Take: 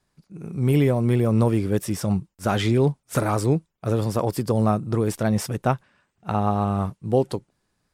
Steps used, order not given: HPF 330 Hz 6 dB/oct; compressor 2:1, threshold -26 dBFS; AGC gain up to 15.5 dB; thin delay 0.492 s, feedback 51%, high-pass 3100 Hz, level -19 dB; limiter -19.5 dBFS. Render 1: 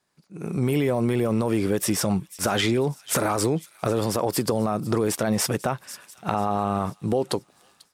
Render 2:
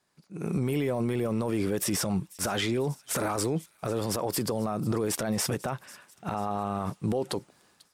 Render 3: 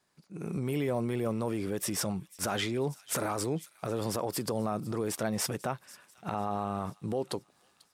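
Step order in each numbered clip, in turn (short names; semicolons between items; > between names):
HPF > limiter > thin delay > AGC > compressor; compressor > HPF > AGC > limiter > thin delay; AGC > compressor > thin delay > limiter > HPF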